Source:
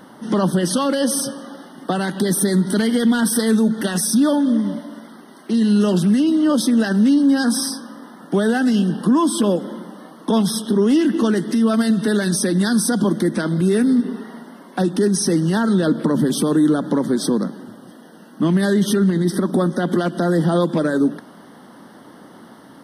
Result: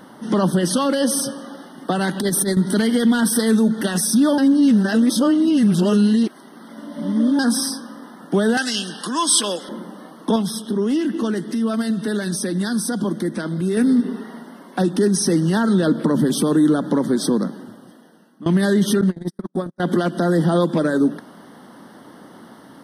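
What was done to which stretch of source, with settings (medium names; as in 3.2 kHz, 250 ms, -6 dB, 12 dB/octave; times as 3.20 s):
2.01–2.57 s: compressor with a negative ratio -19 dBFS, ratio -0.5
4.38–7.39 s: reverse
8.57–9.69 s: frequency weighting ITU-R 468
10.36–13.77 s: gain -4.5 dB
17.55–18.46 s: fade out, to -19.5 dB
19.01–19.80 s: gate -16 dBFS, range -48 dB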